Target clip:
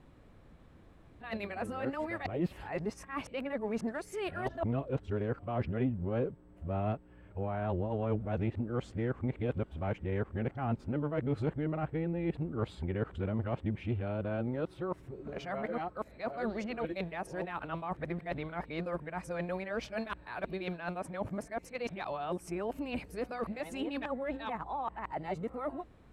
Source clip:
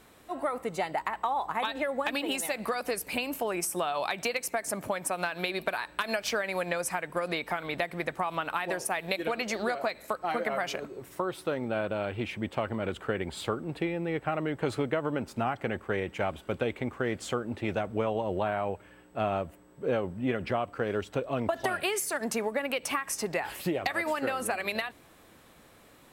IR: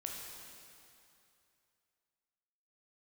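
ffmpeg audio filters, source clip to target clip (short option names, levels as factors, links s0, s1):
-af "areverse,aemphasis=mode=reproduction:type=riaa,aeval=exprs='0.266*(cos(1*acos(clip(val(0)/0.266,-1,1)))-cos(1*PI/2))+0.00596*(cos(5*acos(clip(val(0)/0.266,-1,1)))-cos(5*PI/2))':c=same,volume=0.376"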